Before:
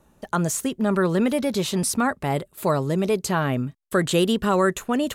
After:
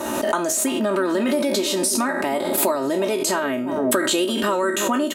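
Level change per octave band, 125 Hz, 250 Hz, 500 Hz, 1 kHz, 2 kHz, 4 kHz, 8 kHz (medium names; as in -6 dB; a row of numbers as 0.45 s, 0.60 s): -12.0 dB, +0.5 dB, +2.5 dB, +1.5 dB, +3.0 dB, +5.0 dB, +6.5 dB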